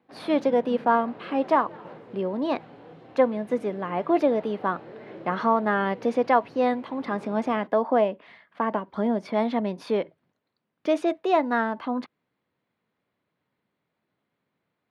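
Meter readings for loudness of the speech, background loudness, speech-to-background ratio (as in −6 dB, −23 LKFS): −25.5 LKFS, −45.0 LKFS, 19.5 dB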